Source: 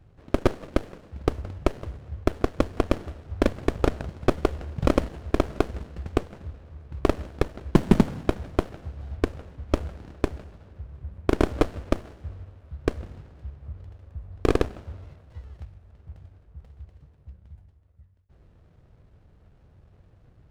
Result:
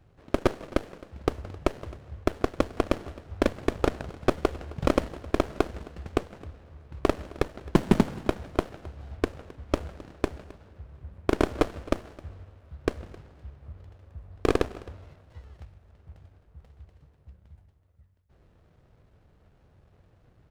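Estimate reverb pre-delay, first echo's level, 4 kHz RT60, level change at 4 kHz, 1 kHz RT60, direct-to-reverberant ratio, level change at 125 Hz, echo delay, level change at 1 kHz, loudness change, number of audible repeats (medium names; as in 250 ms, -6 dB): no reverb, -21.5 dB, no reverb, 0.0 dB, no reverb, no reverb, -4.5 dB, 264 ms, -0.5 dB, -2.0 dB, 1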